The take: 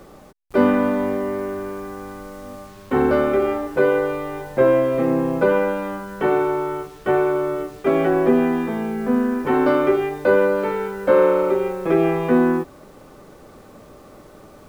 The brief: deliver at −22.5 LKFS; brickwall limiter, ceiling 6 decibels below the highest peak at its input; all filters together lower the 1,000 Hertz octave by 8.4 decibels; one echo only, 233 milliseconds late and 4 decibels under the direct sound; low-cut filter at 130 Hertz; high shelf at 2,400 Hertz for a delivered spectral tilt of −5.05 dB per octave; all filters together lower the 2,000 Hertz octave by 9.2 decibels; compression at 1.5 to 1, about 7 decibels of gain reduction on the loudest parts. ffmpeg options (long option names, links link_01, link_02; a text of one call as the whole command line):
ffmpeg -i in.wav -af "highpass=130,equalizer=frequency=1000:width_type=o:gain=-8.5,equalizer=frequency=2000:width_type=o:gain=-6.5,highshelf=frequency=2400:gain=-5.5,acompressor=threshold=-33dB:ratio=1.5,alimiter=limit=-19dB:level=0:latency=1,aecho=1:1:233:0.631,volume=5.5dB" out.wav